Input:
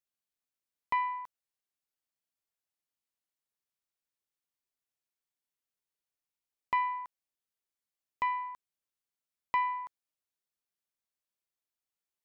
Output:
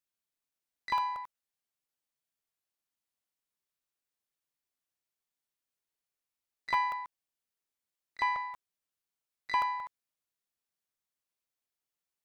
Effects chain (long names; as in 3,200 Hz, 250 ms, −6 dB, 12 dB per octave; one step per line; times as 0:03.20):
pitch-shifted copies added −3 semitones −13 dB, +12 semitones −10 dB
regular buffer underruns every 0.18 s, samples 64, zero, from 0:00.80